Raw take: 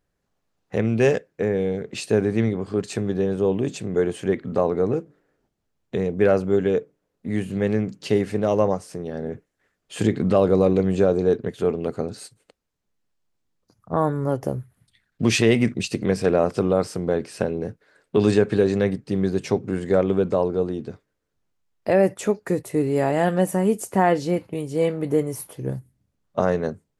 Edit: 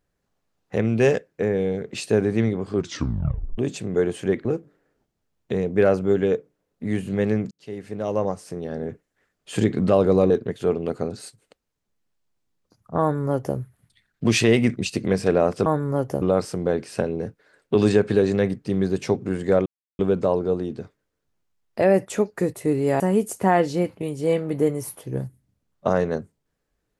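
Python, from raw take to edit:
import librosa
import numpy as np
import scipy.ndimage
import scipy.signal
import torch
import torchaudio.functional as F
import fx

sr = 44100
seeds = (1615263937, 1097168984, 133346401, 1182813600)

y = fx.edit(x, sr, fx.tape_stop(start_s=2.74, length_s=0.84),
    fx.cut(start_s=4.45, length_s=0.43),
    fx.fade_in_span(start_s=7.94, length_s=1.07),
    fx.cut(start_s=10.73, length_s=0.55),
    fx.duplicate(start_s=13.99, length_s=0.56, to_s=16.64),
    fx.insert_silence(at_s=20.08, length_s=0.33),
    fx.cut(start_s=23.09, length_s=0.43), tone=tone)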